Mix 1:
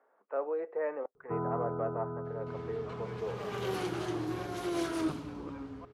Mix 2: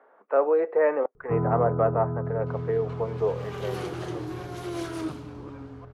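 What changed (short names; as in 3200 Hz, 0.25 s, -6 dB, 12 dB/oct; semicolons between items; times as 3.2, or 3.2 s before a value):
speech +12.0 dB; first sound: remove HPF 560 Hz 6 dB/oct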